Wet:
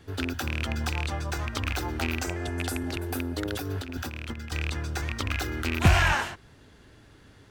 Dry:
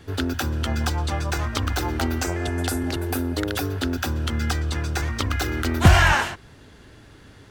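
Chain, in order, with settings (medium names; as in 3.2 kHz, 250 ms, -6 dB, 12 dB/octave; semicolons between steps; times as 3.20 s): rattle on loud lows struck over -21 dBFS, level -11 dBFS; 3.45–4.52 s: compressor with a negative ratio -27 dBFS, ratio -0.5; trim -6 dB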